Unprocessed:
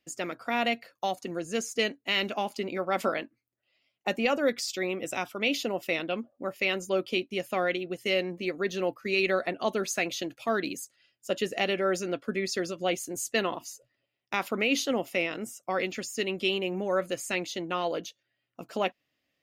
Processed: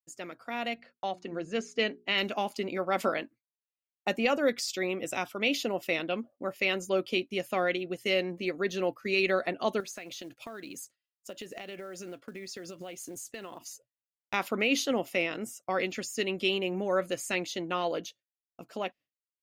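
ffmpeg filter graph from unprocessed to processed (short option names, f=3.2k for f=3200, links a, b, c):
-filter_complex "[0:a]asettb=1/sr,asplit=3[a][b][c];[a]atrim=end=0.744[d];[b]atrim=start=0.74:end=2.18,asetpts=PTS-STARTPTS,afade=t=in:d=0.004:c=qsin,afade=t=out:st=1.436:d=0.004:c=qsin,agate=range=-33dB:threshold=-56dB:ratio=3:release=100:detection=peak,lowpass=4k,bandreject=f=60:t=h:w=6,bandreject=f=120:t=h:w=6,bandreject=f=180:t=h:w=6,bandreject=f=240:t=h:w=6,bandreject=f=300:t=h:w=6,bandreject=f=360:t=h:w=6,bandreject=f=420:t=h:w=6[e];[c]atrim=start=2.176[f];[d][e]acrossfade=d=0.004:c1=hsin:c2=qsin[g];[g][f]acrossfade=d=0.004:c1=qsin:c2=hsin,asettb=1/sr,asplit=3[h][i][j];[h]atrim=end=9.804[k];[i]atrim=start=9.8:end=13.72,asetpts=PTS-STARTPTS,afade=t=in:d=0.004:c=qsin,afade=t=out:st=3.916:d=0.004:c=qsin,acompressor=threshold=-37dB:ratio=12:attack=3.2:release=140:knee=1:detection=peak,acrusher=bits=6:mode=log:mix=0:aa=0.000001[l];[j]atrim=start=13.716[m];[k][l]acrossfade=d=0.004:c1=hsin:c2=qsin[n];[n][m]acrossfade=d=0.004:c1=qsin:c2=hsin,agate=range=-33dB:threshold=-45dB:ratio=3:detection=peak,dynaudnorm=f=130:g=17:m=7dB,volume=-7.5dB"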